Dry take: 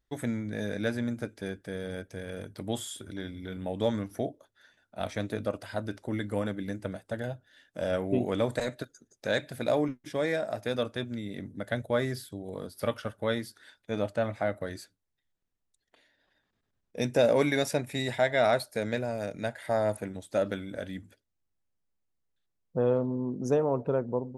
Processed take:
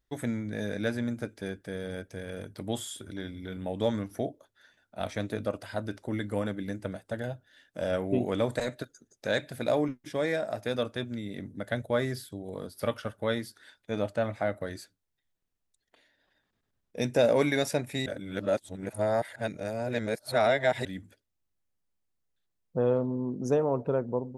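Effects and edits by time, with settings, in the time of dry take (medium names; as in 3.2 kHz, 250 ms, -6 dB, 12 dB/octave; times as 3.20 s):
18.06–20.85 s: reverse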